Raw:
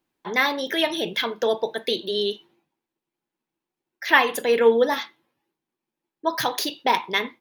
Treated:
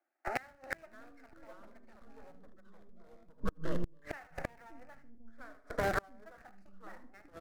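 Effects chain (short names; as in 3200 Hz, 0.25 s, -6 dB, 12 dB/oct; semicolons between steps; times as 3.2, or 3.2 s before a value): rattling part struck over -34 dBFS, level -12 dBFS; LPF 1400 Hz 12 dB/oct; bell 170 Hz -6.5 dB 0.29 oct; half-wave rectifier; fixed phaser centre 680 Hz, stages 8; bands offset in time highs, lows 0.59 s, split 410 Hz; in parallel at -8 dB: Schmitt trigger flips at -33 dBFS; on the sum: echoes that change speed 0.495 s, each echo -3 st, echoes 2; on a send: feedback echo 77 ms, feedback 25%, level -14 dB; on the sum: flipped gate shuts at -26 dBFS, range -31 dB; gain +6.5 dB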